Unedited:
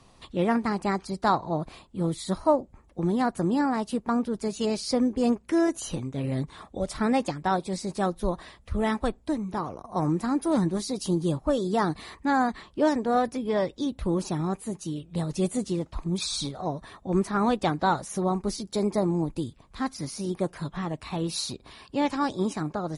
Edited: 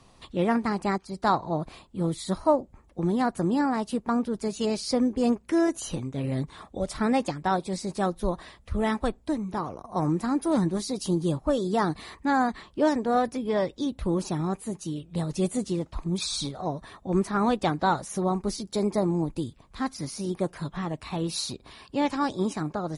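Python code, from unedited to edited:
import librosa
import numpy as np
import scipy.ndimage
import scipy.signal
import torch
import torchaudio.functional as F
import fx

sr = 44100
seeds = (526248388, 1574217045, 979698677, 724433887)

y = fx.edit(x, sr, fx.fade_in_from(start_s=0.98, length_s=0.37, curve='qsin', floor_db=-13.0), tone=tone)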